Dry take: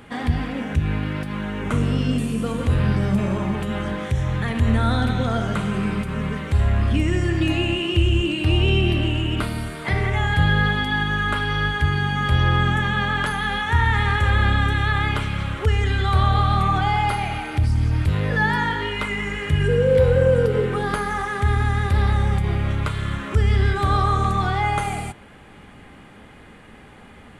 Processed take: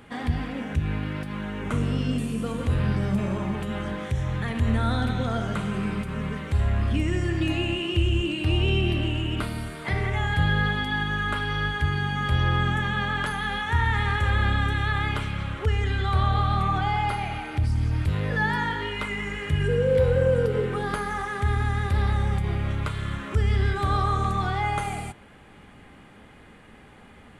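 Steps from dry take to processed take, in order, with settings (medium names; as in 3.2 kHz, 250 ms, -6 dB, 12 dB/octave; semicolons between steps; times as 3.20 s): 15.31–17.65 s: treble shelf 6.2 kHz -4.5 dB; trim -4.5 dB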